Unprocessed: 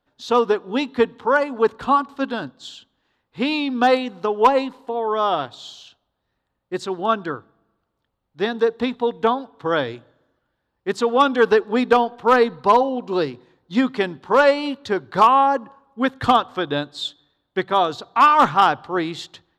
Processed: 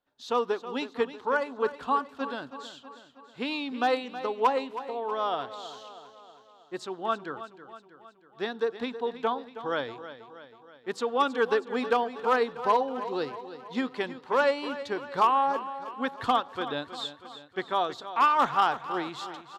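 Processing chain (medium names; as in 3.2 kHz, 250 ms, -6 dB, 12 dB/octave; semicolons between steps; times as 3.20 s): bass shelf 190 Hz -9.5 dB; feedback delay 320 ms, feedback 55%, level -13 dB; trim -8.5 dB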